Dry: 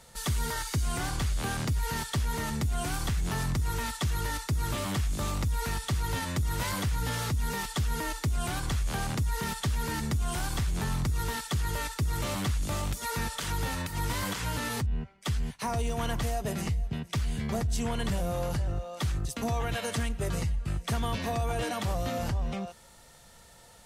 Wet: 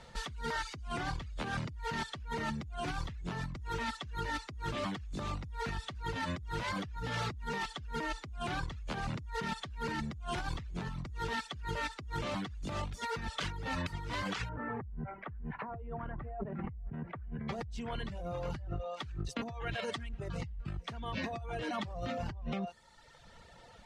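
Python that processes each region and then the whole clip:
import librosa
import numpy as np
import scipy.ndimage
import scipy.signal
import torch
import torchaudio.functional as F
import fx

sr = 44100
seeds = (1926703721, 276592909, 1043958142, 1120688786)

y = fx.chain(x, sr, fx.lowpass(hz=1700.0, slope=24),
    fx.env_flatten(amount_pct=50), at=(14.49, 17.48))
y = fx.dereverb_blind(y, sr, rt60_s=1.1)
y = scipy.signal.sosfilt(scipy.signal.butter(2, 3800.0, 'lowpass', fs=sr, output='sos'), y)
y = fx.over_compress(y, sr, threshold_db=-37.0, ratio=-1.0)
y = y * 10.0 ** (-2.0 / 20.0)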